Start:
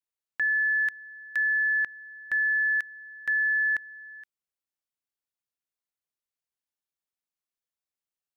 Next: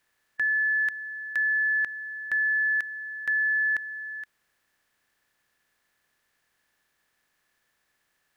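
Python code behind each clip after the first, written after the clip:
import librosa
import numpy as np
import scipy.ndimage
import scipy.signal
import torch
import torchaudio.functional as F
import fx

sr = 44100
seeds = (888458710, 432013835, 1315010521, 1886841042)

y = fx.bin_compress(x, sr, power=0.6)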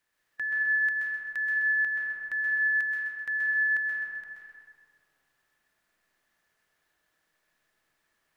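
y = fx.echo_feedback(x, sr, ms=129, feedback_pct=46, wet_db=-7.0)
y = fx.rev_freeverb(y, sr, rt60_s=2.2, hf_ratio=0.35, predelay_ms=100, drr_db=-3.0)
y = y * 10.0 ** (-6.5 / 20.0)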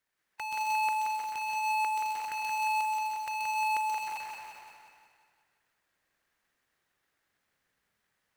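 y = fx.cycle_switch(x, sr, every=2, mode='inverted')
y = fx.echo_feedback(y, sr, ms=177, feedback_pct=54, wet_db=-5.0)
y = y * 10.0 ** (-5.5 / 20.0)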